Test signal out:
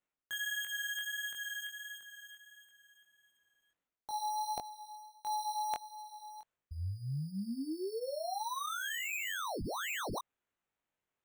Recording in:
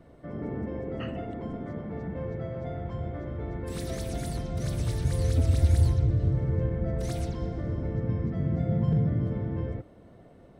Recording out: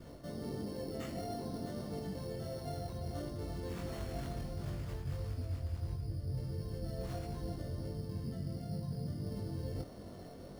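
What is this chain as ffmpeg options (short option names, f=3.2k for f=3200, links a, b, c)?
-af "adynamicequalizer=threshold=0.00562:dfrequency=730:dqfactor=4.9:tfrequency=730:tqfactor=4.9:attack=5:release=100:ratio=0.375:range=2.5:mode=boostabove:tftype=bell,areverse,acompressor=threshold=-41dB:ratio=6,areverse,acrusher=samples=9:mix=1:aa=0.000001,flanger=delay=20:depth=2.6:speed=1.5,volume=6dB"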